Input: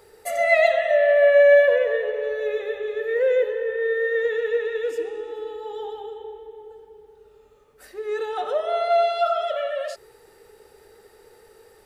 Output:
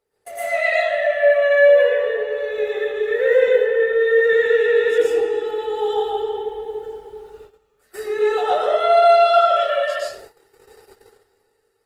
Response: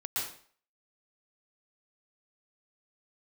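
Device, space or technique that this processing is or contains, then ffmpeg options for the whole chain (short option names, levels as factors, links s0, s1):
speakerphone in a meeting room: -filter_complex "[1:a]atrim=start_sample=2205[s0];[0:a][s0]afir=irnorm=-1:irlink=0,dynaudnorm=f=160:g=13:m=5.01,agate=range=0.141:threshold=0.0141:ratio=16:detection=peak,volume=0.668" -ar 48000 -c:a libopus -b:a 20k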